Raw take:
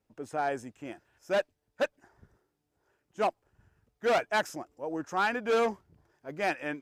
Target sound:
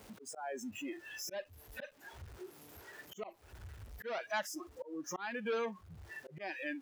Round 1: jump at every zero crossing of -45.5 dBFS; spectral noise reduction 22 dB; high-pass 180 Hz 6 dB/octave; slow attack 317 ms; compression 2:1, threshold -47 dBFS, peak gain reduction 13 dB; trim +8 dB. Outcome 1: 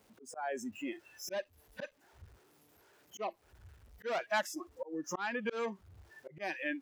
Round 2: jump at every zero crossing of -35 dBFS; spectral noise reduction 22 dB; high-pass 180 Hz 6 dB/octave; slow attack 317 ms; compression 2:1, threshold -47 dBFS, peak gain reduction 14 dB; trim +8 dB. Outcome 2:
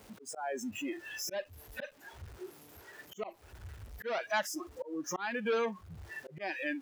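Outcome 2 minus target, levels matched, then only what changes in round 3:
compression: peak gain reduction -4.5 dB
change: compression 2:1, threshold -56 dBFS, peak gain reduction 18.5 dB

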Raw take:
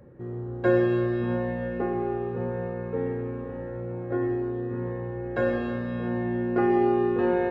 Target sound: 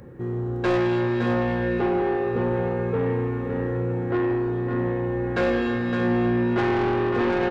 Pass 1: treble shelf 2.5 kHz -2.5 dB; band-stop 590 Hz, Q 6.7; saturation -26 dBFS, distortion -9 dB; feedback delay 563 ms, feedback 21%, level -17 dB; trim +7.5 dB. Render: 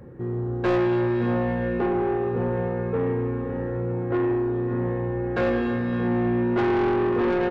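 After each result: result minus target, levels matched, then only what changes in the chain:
echo-to-direct -9.5 dB; 4 kHz band -4.0 dB
change: feedback delay 563 ms, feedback 21%, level -7.5 dB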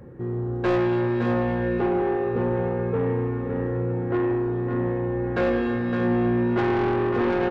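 4 kHz band -4.0 dB
change: treble shelf 2.5 kHz +7 dB

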